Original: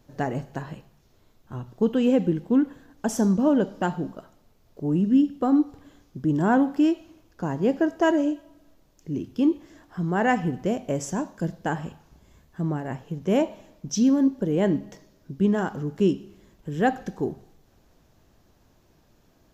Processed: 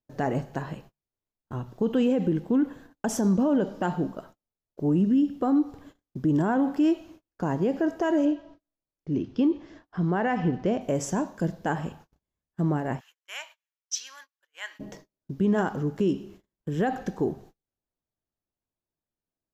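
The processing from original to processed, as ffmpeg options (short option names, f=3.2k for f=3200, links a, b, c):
-filter_complex "[0:a]asettb=1/sr,asplit=3[a][b][c];[a]atrim=end=8.254[d];[b]atrim=start=8.25:end=10.81,asetpts=PTS-STARTPTS,afade=t=in:d=0.004:c=qsin,afade=t=out:st=2.556:d=0.004:c=qsin,lowpass=f=5.5k:w=0.5412,lowpass=f=5.5k:w=1.3066[e];[c]atrim=start=10.806[f];[d][e]acrossfade=d=0.004:c1=hsin:c2=qsin[g];[g][f]acrossfade=d=0.004:c1=qsin:c2=hsin,asplit=3[h][i][j];[h]afade=t=out:st=12.99:d=0.02[k];[i]highpass=f=1.4k:w=0.5412,highpass=f=1.4k:w=1.3066,afade=t=in:st=12.99:d=0.02,afade=t=out:st=14.79:d=0.02[l];[j]afade=t=in:st=14.79:d=0.02[m];[k][l][m]amix=inputs=3:normalize=0,equalizer=f=680:w=0.31:g=3,alimiter=limit=-16dB:level=0:latency=1:release=57,agate=range=-35dB:threshold=-47dB:ratio=16:detection=peak"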